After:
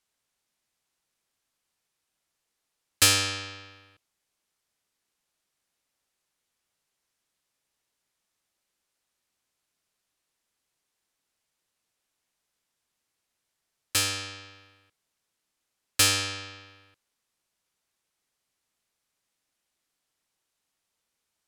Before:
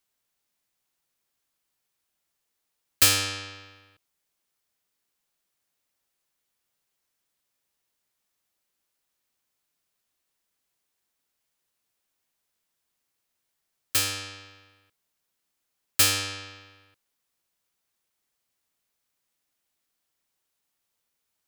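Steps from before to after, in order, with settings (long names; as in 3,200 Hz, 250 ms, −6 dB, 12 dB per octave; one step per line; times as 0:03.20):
low-pass filter 11,000 Hz 12 dB per octave
level +1 dB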